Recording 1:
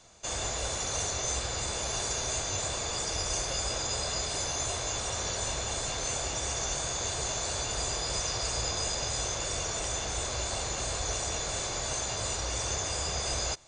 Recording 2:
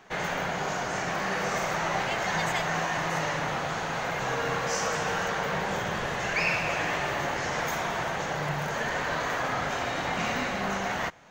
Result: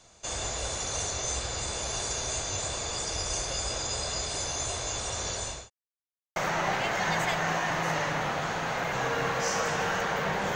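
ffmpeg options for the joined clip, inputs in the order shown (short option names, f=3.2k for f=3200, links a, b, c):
-filter_complex "[0:a]apad=whole_dur=10.55,atrim=end=10.55,asplit=2[a][b];[a]atrim=end=5.7,asetpts=PTS-STARTPTS,afade=t=out:st=5.27:d=0.43:c=qsin[c];[b]atrim=start=5.7:end=6.36,asetpts=PTS-STARTPTS,volume=0[d];[1:a]atrim=start=1.63:end=5.82,asetpts=PTS-STARTPTS,afade=t=in:d=0.004:c=hsin[e];[c][d][e]concat=n=3:v=0:a=1"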